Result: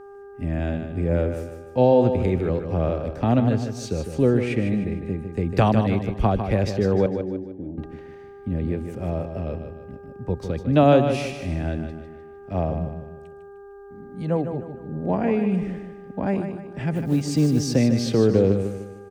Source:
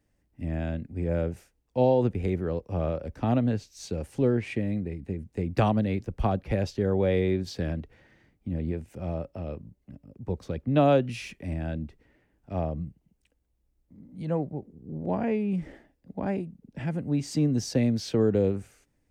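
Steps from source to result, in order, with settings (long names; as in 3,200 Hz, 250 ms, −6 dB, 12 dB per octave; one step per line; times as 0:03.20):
hum with harmonics 400 Hz, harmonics 4, −48 dBFS −9 dB per octave
0:07.06–0:07.78: formant resonators in series u
0:16.95–0:17.75: floating-point word with a short mantissa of 4 bits
on a send: repeating echo 152 ms, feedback 40%, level −8 dB
on the sum: level +5 dB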